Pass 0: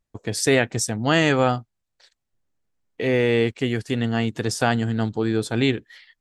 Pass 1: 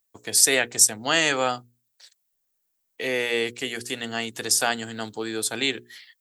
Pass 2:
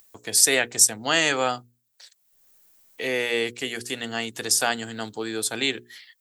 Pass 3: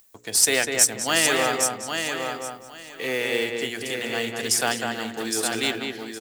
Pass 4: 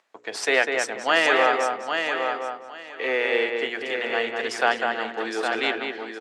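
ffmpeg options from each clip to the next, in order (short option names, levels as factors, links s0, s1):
-filter_complex "[0:a]aemphasis=mode=production:type=riaa,bandreject=f=60:t=h:w=6,bandreject=f=120:t=h:w=6,bandreject=f=180:t=h:w=6,bandreject=f=240:t=h:w=6,bandreject=f=300:t=h:w=6,bandreject=f=360:t=h:w=6,bandreject=f=420:t=h:w=6,bandreject=f=480:t=h:w=6,acrossover=split=230[s0][s1];[s0]alimiter=level_in=3.16:limit=0.0631:level=0:latency=1,volume=0.316[s2];[s2][s1]amix=inputs=2:normalize=0,volume=0.75"
-af "acompressor=mode=upward:threshold=0.00794:ratio=2.5"
-filter_complex "[0:a]asplit=2[s0][s1];[s1]aecho=0:1:813|1626|2439:0.501|0.0952|0.0181[s2];[s0][s2]amix=inputs=2:normalize=0,acrusher=bits=4:mode=log:mix=0:aa=0.000001,asplit=2[s3][s4];[s4]adelay=200,lowpass=f=2400:p=1,volume=0.668,asplit=2[s5][s6];[s6]adelay=200,lowpass=f=2400:p=1,volume=0.28,asplit=2[s7][s8];[s8]adelay=200,lowpass=f=2400:p=1,volume=0.28,asplit=2[s9][s10];[s10]adelay=200,lowpass=f=2400:p=1,volume=0.28[s11];[s5][s7][s9][s11]amix=inputs=4:normalize=0[s12];[s3][s12]amix=inputs=2:normalize=0,volume=0.891"
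-af "highpass=450,lowpass=2200,volume=1.88"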